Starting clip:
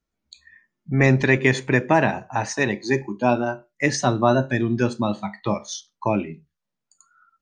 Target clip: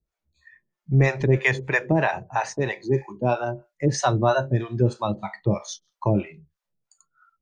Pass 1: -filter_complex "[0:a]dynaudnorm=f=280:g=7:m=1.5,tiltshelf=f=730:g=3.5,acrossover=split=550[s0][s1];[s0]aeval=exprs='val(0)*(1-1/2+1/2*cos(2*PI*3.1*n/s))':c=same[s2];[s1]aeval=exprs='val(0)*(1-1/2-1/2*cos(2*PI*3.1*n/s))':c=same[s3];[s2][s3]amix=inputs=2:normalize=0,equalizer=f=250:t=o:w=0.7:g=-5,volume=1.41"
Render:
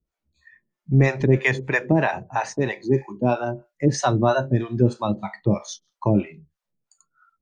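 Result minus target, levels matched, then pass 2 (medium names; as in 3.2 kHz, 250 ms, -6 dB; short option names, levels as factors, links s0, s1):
250 Hz band +2.5 dB
-filter_complex "[0:a]dynaudnorm=f=280:g=7:m=1.5,tiltshelf=f=730:g=3.5,acrossover=split=550[s0][s1];[s0]aeval=exprs='val(0)*(1-1/2+1/2*cos(2*PI*3.1*n/s))':c=same[s2];[s1]aeval=exprs='val(0)*(1-1/2-1/2*cos(2*PI*3.1*n/s))':c=same[s3];[s2][s3]amix=inputs=2:normalize=0,equalizer=f=250:t=o:w=0.7:g=-12,volume=1.41"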